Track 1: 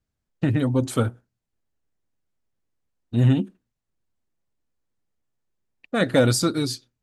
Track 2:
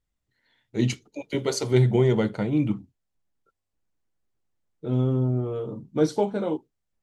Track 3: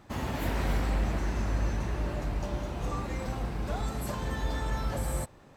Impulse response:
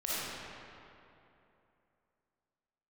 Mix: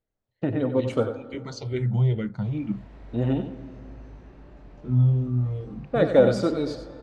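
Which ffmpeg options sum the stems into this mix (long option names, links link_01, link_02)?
-filter_complex "[0:a]equalizer=frequency=540:width=0.73:gain=13,volume=-10.5dB,asplit=3[link_01][link_02][link_03];[link_02]volume=-19.5dB[link_04];[link_03]volume=-9dB[link_05];[1:a]asubboost=boost=8:cutoff=160,asplit=2[link_06][link_07];[link_07]afreqshift=-2.3[link_08];[link_06][link_08]amix=inputs=2:normalize=1,volume=-5.5dB[link_09];[2:a]acrossover=split=250|590[link_10][link_11][link_12];[link_10]acompressor=threshold=-41dB:ratio=4[link_13];[link_11]acompressor=threshold=-49dB:ratio=4[link_14];[link_12]acompressor=threshold=-54dB:ratio=4[link_15];[link_13][link_14][link_15]amix=inputs=3:normalize=0,flanger=delay=19:depth=5:speed=1.2,adelay=2350,volume=-8dB,asplit=2[link_16][link_17];[link_17]volume=-7dB[link_18];[3:a]atrim=start_sample=2205[link_19];[link_04][link_18]amix=inputs=2:normalize=0[link_20];[link_20][link_19]afir=irnorm=-1:irlink=0[link_21];[link_05]aecho=0:1:93:1[link_22];[link_01][link_09][link_16][link_21][link_22]amix=inputs=5:normalize=0,lowpass=4700"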